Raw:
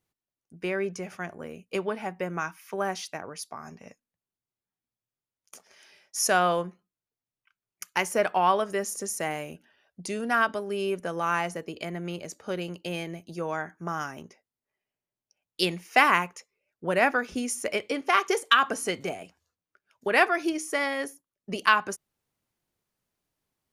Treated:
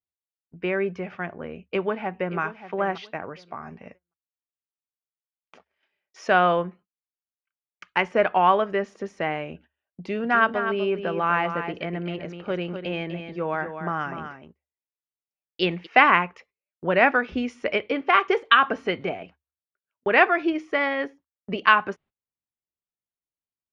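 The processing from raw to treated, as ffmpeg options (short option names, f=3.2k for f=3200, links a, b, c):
-filter_complex "[0:a]asplit=2[a][b];[b]afade=t=in:st=1.55:d=0.01,afade=t=out:st=2.39:d=0.01,aecho=0:1:580|1160|1740:0.211349|0.0528372|0.0132093[c];[a][c]amix=inputs=2:normalize=0,asplit=3[d][e][f];[d]afade=t=out:st=10.15:d=0.02[g];[e]aecho=1:1:250:0.376,afade=t=in:st=10.15:d=0.02,afade=t=out:st=15.85:d=0.02[h];[f]afade=t=in:st=15.85:d=0.02[i];[g][h][i]amix=inputs=3:normalize=0,asettb=1/sr,asplit=3[j][k][l];[j]atrim=end=16.364[m];[k]atrim=start=16.36:end=17.78,asetpts=PTS-STARTPTS,afade=t=in:d=0.004:c=qsin,afade=t=out:st=1.416:d=0.004:c=qsin,highshelf=f=3.7k:g=4.5[n];[l]atrim=start=17.776[o];[m][n]acrossfade=d=0.004:c1=hsin:c2=qsin[p];[p][o]acrossfade=d=0.004:c1=qsin:c2=hsin,agate=range=-24dB:threshold=-52dB:ratio=16:detection=peak,lowpass=f=3.2k:w=0.5412,lowpass=f=3.2k:w=1.3066,equalizer=f=73:w=6.4:g=8.5,volume=4dB"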